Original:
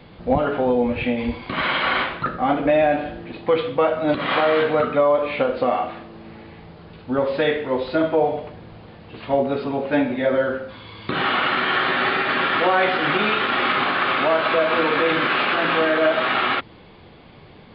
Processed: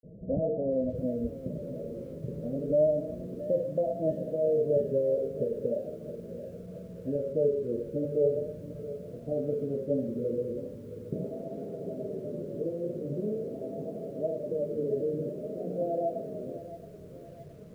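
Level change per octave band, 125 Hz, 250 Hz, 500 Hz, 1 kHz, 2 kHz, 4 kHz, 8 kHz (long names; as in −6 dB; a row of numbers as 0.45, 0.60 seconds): −4.0 dB, −10.0 dB, −8.0 dB, below −25 dB, below −40 dB, below −40 dB, can't be measured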